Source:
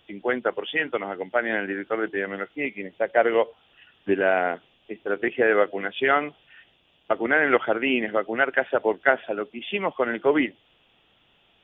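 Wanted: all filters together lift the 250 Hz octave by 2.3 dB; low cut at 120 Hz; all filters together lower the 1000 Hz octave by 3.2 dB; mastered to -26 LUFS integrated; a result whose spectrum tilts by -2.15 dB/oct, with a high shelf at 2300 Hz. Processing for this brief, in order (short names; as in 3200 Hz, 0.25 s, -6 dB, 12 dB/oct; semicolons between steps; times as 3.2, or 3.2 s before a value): HPF 120 Hz; bell 250 Hz +3.5 dB; bell 1000 Hz -6.5 dB; high shelf 2300 Hz +4 dB; gain -1.5 dB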